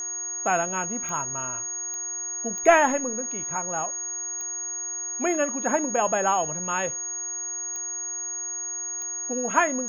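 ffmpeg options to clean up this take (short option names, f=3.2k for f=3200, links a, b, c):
-af "adeclick=t=4,bandreject=f=363.3:t=h:w=4,bandreject=f=726.6:t=h:w=4,bandreject=f=1.0899k:t=h:w=4,bandreject=f=1.4532k:t=h:w=4,bandreject=f=1.8165k:t=h:w=4,bandreject=f=6.6k:w=30"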